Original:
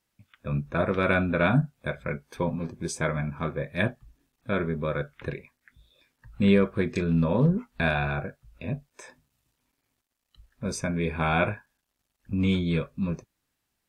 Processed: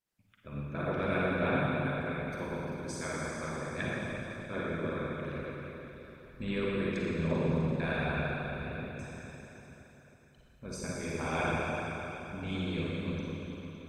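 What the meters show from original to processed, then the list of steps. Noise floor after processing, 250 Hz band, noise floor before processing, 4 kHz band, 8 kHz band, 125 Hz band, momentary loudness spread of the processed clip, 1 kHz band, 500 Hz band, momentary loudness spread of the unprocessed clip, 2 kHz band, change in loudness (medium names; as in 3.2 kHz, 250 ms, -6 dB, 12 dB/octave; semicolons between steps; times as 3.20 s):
-61 dBFS, -7.5 dB, -80 dBFS, -5.0 dB, -4.5 dB, -7.5 dB, 14 LU, -5.0 dB, -5.5 dB, 13 LU, -5.5 dB, -7.5 dB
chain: Schroeder reverb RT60 3.8 s, DRR -8 dB; harmonic-percussive split harmonic -11 dB; trim -8.5 dB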